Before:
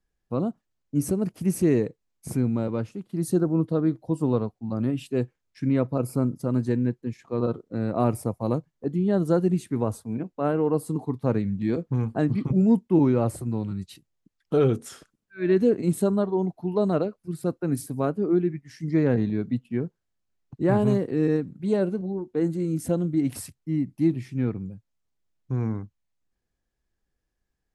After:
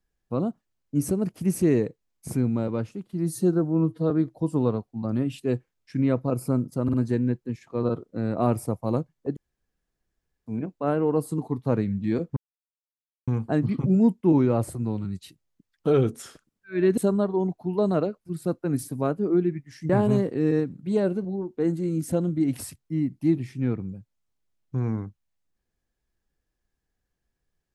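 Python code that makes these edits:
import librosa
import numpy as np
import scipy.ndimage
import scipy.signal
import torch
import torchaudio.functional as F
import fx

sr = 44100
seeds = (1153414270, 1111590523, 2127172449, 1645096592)

y = fx.edit(x, sr, fx.stretch_span(start_s=3.13, length_s=0.65, factor=1.5),
    fx.stutter(start_s=6.51, slice_s=0.05, count=3),
    fx.room_tone_fill(start_s=8.94, length_s=1.1),
    fx.insert_silence(at_s=11.94, length_s=0.91),
    fx.cut(start_s=15.64, length_s=0.32),
    fx.cut(start_s=18.88, length_s=1.78), tone=tone)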